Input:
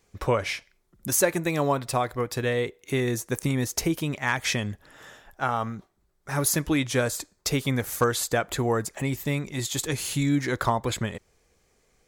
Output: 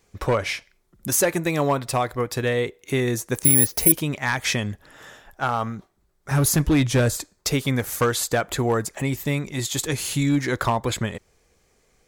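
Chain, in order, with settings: 6.31–7.17 low shelf 200 Hz +11.5 dB; hard clip -16.5 dBFS, distortion -17 dB; 3.44–3.92 careless resampling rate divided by 4×, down filtered, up zero stuff; gain +3 dB

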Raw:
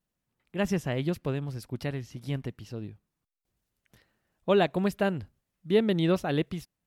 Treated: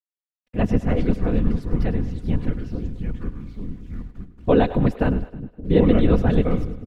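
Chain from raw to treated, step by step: low shelf 150 Hz -8.5 dB; notch 3100 Hz, Q 25; echoes that change speed 0.138 s, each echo -4 st, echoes 2, each echo -6 dB; bit-crush 10-bit; whisperiser; RIAA curve playback; comb 4.1 ms, depth 34%; split-band echo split 390 Hz, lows 0.575 s, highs 0.103 s, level -14.5 dB; gain +2.5 dB

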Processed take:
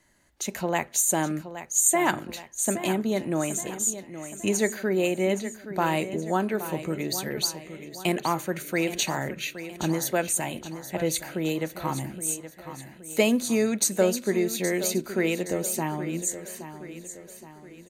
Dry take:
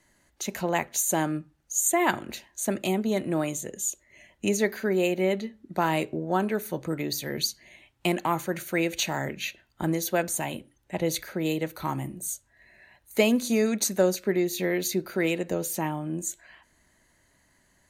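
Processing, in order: dynamic EQ 8200 Hz, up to +6 dB, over -45 dBFS, Q 2.2; on a send: feedback echo 0.821 s, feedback 47%, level -12 dB

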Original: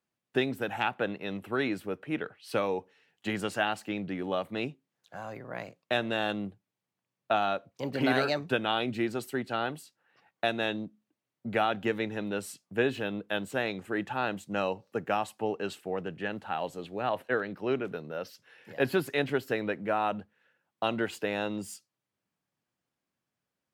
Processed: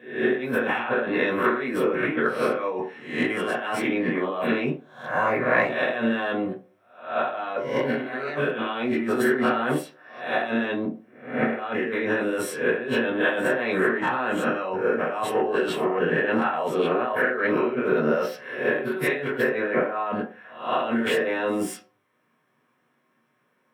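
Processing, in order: spectral swells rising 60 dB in 0.52 s; negative-ratio compressor -37 dBFS, ratio -1; reverb RT60 0.40 s, pre-delay 3 ms, DRR -2.5 dB

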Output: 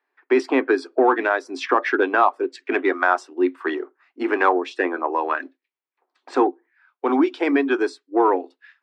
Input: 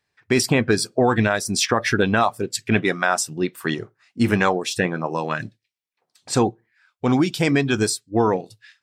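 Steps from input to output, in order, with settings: LPF 2100 Hz 12 dB/oct; in parallel at -9 dB: soft clip -14.5 dBFS, distortion -13 dB; on the sum: rippled Chebyshev high-pass 260 Hz, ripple 6 dB; gain +3 dB

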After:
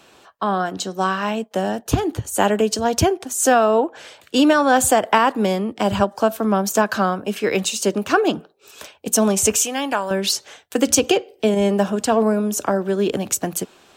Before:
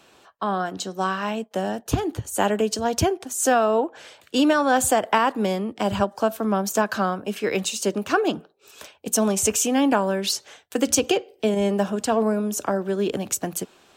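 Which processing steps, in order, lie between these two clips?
9.63–10.11 bell 210 Hz -12.5 dB 3 oct; gain +4 dB

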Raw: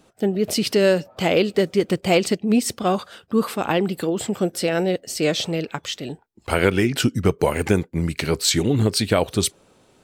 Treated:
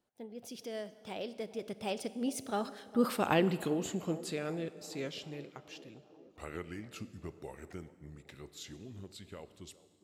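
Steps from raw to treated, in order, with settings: Doppler pass-by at 3.29, 40 m/s, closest 16 m; band-limited delay 0.405 s, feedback 70%, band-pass 470 Hz, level -17.5 dB; Schroeder reverb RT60 1.6 s, combs from 30 ms, DRR 15 dB; gain -7 dB

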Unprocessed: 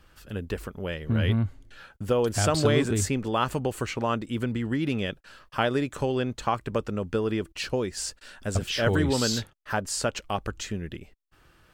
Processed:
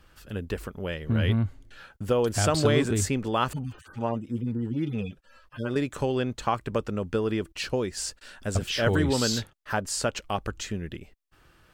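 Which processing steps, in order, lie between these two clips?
3.53–5.76 median-filter separation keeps harmonic

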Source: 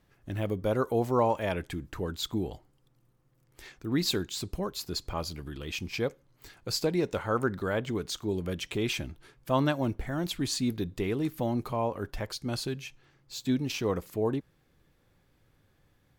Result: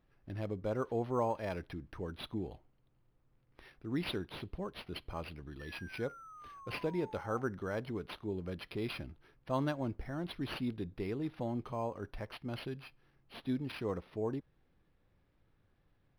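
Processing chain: added noise brown -66 dBFS; painted sound fall, 5.59–7.42, 750–1800 Hz -44 dBFS; decimation joined by straight lines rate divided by 6×; gain -7.5 dB

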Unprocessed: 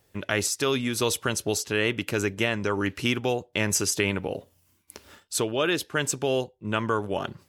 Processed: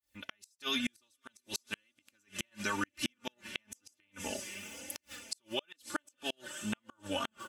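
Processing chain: opening faded in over 0.59 s; passive tone stack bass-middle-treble 5-5-5; comb 3.4 ms, depth 86%; compressor 4:1, threshold -39 dBFS, peak gain reduction 12.5 dB; diffused feedback echo 0.525 s, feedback 54%, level -13 dB; flange 1 Hz, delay 3.2 ms, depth 2.3 ms, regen +11%; flipped gate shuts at -34 dBFS, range -40 dB; gain +13 dB

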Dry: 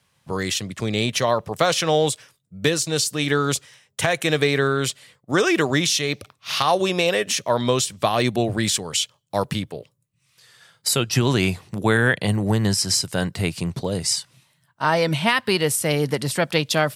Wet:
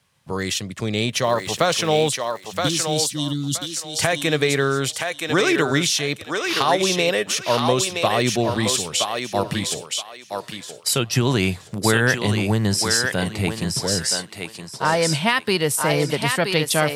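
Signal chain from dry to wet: 1.22–2.1 crackle 440/s -33 dBFS; 2.09–3.73 spectral gain 350–2800 Hz -28 dB; thinning echo 0.972 s, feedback 26%, high-pass 480 Hz, level -3.5 dB

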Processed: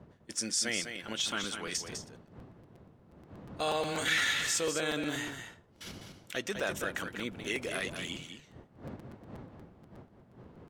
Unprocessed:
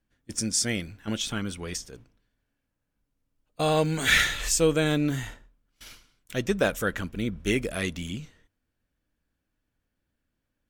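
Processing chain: wind noise 90 Hz -30 dBFS; notch 2400 Hz, Q 28; limiter -20 dBFS, peak gain reduction 10.5 dB; weighting filter A; on a send: echo 0.202 s -7.5 dB; on the sum: crackling interface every 0.12 s, samples 256, repeat, from 0.83

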